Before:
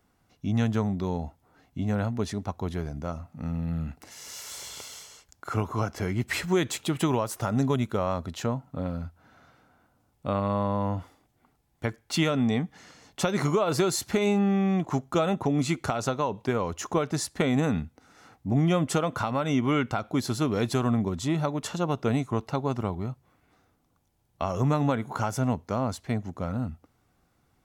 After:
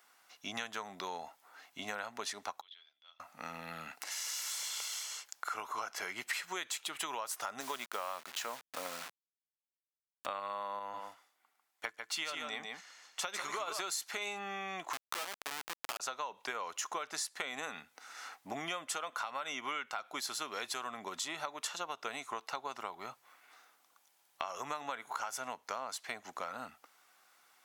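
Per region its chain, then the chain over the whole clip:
0:02.61–0:03.20: resonant band-pass 3,400 Hz, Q 16 + high-frequency loss of the air 180 metres
0:07.60–0:10.26: hold until the input has moved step −39 dBFS + high-pass filter 150 Hz
0:10.79–0:13.81: single-tap delay 147 ms −5.5 dB + expander for the loud parts, over −44 dBFS
0:14.93–0:16.00: parametric band 1,200 Hz +8 dB 1.2 octaves + comparator with hysteresis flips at −20 dBFS
whole clip: high-pass filter 1,100 Hz 12 dB per octave; downward compressor 5 to 1, threshold −46 dBFS; level +9 dB

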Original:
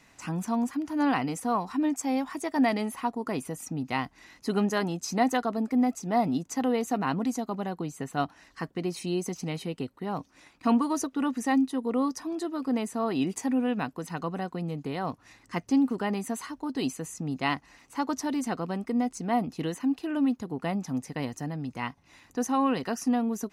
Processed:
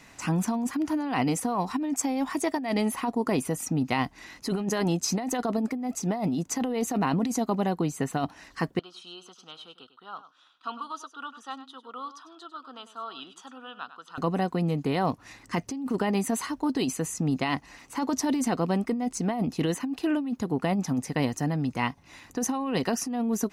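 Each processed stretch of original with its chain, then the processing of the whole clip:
0:08.79–0:14.18: pair of resonant band-passes 2,100 Hz, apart 1.3 octaves + single-tap delay 99 ms −13.5 dB
whole clip: dynamic equaliser 1,400 Hz, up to −4 dB, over −43 dBFS, Q 2; compressor whose output falls as the input rises −30 dBFS, ratio −1; level +4 dB

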